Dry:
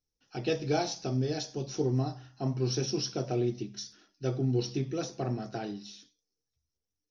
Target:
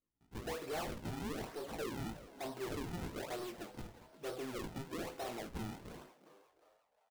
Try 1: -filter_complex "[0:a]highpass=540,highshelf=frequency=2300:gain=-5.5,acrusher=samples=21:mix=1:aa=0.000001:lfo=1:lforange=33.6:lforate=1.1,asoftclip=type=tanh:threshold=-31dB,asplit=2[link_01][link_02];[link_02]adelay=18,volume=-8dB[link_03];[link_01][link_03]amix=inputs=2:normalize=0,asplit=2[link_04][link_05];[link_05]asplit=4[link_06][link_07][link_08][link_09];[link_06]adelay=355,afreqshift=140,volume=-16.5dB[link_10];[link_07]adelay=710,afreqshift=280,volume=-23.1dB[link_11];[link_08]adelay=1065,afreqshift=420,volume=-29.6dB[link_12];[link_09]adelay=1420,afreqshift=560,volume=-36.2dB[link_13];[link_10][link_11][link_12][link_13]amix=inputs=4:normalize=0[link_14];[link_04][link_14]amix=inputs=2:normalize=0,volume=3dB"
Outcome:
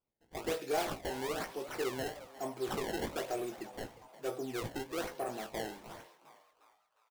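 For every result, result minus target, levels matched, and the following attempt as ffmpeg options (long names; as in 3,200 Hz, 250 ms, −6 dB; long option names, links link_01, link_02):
soft clipping: distortion −8 dB; sample-and-hold swept by an LFO: distortion −7 dB
-filter_complex "[0:a]highpass=540,highshelf=frequency=2300:gain=-5.5,acrusher=samples=21:mix=1:aa=0.000001:lfo=1:lforange=33.6:lforate=1.1,asoftclip=type=tanh:threshold=-41.5dB,asplit=2[link_01][link_02];[link_02]adelay=18,volume=-8dB[link_03];[link_01][link_03]amix=inputs=2:normalize=0,asplit=2[link_04][link_05];[link_05]asplit=4[link_06][link_07][link_08][link_09];[link_06]adelay=355,afreqshift=140,volume=-16.5dB[link_10];[link_07]adelay=710,afreqshift=280,volume=-23.1dB[link_11];[link_08]adelay=1065,afreqshift=420,volume=-29.6dB[link_12];[link_09]adelay=1420,afreqshift=560,volume=-36.2dB[link_13];[link_10][link_11][link_12][link_13]amix=inputs=4:normalize=0[link_14];[link_04][link_14]amix=inputs=2:normalize=0,volume=3dB"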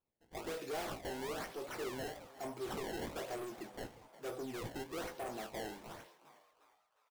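sample-and-hold swept by an LFO: distortion −7 dB
-filter_complex "[0:a]highpass=540,highshelf=frequency=2300:gain=-5.5,acrusher=samples=46:mix=1:aa=0.000001:lfo=1:lforange=73.6:lforate=1.1,asoftclip=type=tanh:threshold=-41.5dB,asplit=2[link_01][link_02];[link_02]adelay=18,volume=-8dB[link_03];[link_01][link_03]amix=inputs=2:normalize=0,asplit=2[link_04][link_05];[link_05]asplit=4[link_06][link_07][link_08][link_09];[link_06]adelay=355,afreqshift=140,volume=-16.5dB[link_10];[link_07]adelay=710,afreqshift=280,volume=-23.1dB[link_11];[link_08]adelay=1065,afreqshift=420,volume=-29.6dB[link_12];[link_09]adelay=1420,afreqshift=560,volume=-36.2dB[link_13];[link_10][link_11][link_12][link_13]amix=inputs=4:normalize=0[link_14];[link_04][link_14]amix=inputs=2:normalize=0,volume=3dB"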